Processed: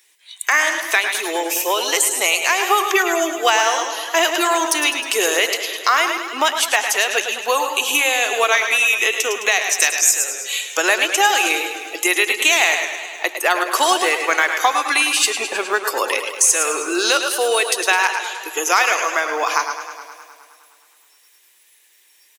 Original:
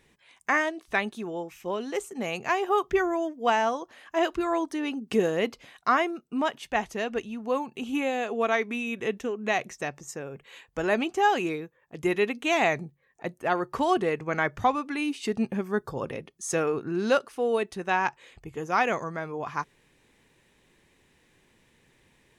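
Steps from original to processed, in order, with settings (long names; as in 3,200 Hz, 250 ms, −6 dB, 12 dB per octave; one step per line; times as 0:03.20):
first difference
single-tap delay 112 ms −11 dB
noise reduction from a noise print of the clip's start 18 dB
0:02.84–0:03.49: notch filter 970 Hz, Q 6.2
0:09.80–0:10.24: high-shelf EQ 2,300 Hz +11 dB
0:15.30–0:15.84: low-pass filter 3,300 Hz 24 dB per octave
downward compressor 3 to 1, threshold −49 dBFS, peak gain reduction 16.5 dB
elliptic high-pass filter 320 Hz, stop band 70 dB
floating-point word with a short mantissa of 4 bits
boost into a limiter +35 dB
feedback echo with a swinging delay time 104 ms, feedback 72%, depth 87 cents, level −11 dB
level −1 dB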